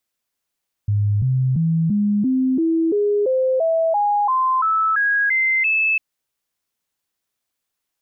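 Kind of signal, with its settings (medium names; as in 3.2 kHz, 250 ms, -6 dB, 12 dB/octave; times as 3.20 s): stepped sine 103 Hz up, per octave 3, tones 15, 0.34 s, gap 0.00 s -15 dBFS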